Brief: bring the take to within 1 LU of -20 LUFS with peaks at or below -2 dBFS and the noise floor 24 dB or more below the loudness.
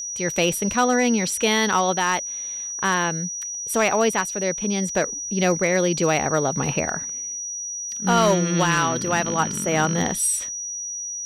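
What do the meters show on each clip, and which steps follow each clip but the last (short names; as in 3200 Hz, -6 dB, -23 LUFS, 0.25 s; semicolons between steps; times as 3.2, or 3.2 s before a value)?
clipped 0.3%; flat tops at -11.5 dBFS; steady tone 5800 Hz; tone level -28 dBFS; loudness -22.0 LUFS; peak -11.5 dBFS; loudness target -20.0 LUFS
-> clip repair -11.5 dBFS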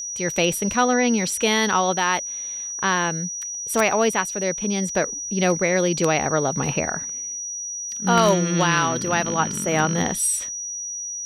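clipped 0.0%; steady tone 5800 Hz; tone level -28 dBFS
-> notch 5800 Hz, Q 30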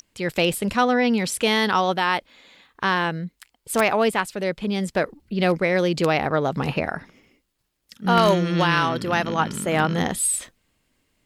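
steady tone none; loudness -22.0 LUFS; peak -2.0 dBFS; loudness target -20.0 LUFS
-> gain +2 dB; limiter -2 dBFS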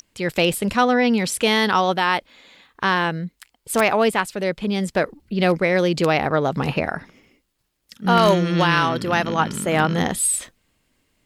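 loudness -20.0 LUFS; peak -2.0 dBFS; noise floor -72 dBFS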